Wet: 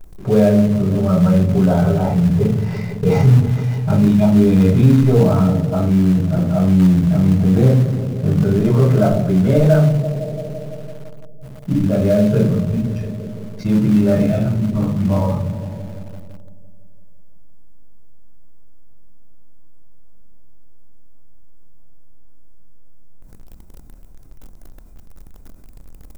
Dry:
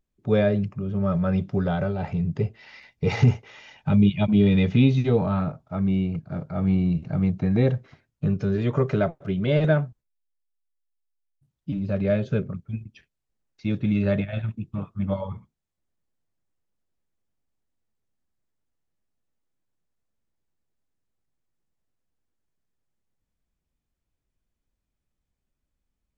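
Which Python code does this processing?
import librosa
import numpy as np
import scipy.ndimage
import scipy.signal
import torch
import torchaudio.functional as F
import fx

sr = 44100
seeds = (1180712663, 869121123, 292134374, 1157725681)

p1 = fx.peak_eq(x, sr, hz=3000.0, db=-14.5, octaves=2.0)
p2 = fx.echo_bbd(p1, sr, ms=168, stages=1024, feedback_pct=63, wet_db=-18.0)
p3 = fx.room_shoebox(p2, sr, seeds[0], volume_m3=270.0, walls='furnished', distance_m=5.2)
p4 = fx.quant_companded(p3, sr, bits=4)
p5 = p3 + (p4 * librosa.db_to_amplitude(-9.5))
p6 = fx.env_flatten(p5, sr, amount_pct=50)
y = p6 * librosa.db_to_amplitude(-8.0)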